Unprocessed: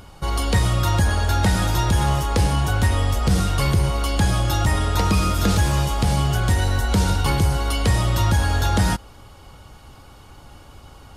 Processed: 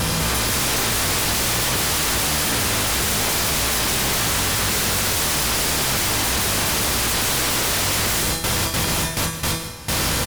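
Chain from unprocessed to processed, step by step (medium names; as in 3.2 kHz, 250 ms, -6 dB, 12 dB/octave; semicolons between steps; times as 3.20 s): spectral levelling over time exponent 0.2; gate with hold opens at -7 dBFS; treble shelf 2.4 kHz +8 dB; peak limiter -4 dBFS, peak gain reduction 5.5 dB; level rider; feedback comb 150 Hz, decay 0.76 s, harmonics all, mix 80%; wavefolder -24 dBFS; delay 175 ms -12.5 dB; speed mistake 44.1 kHz file played as 48 kHz; trim +8 dB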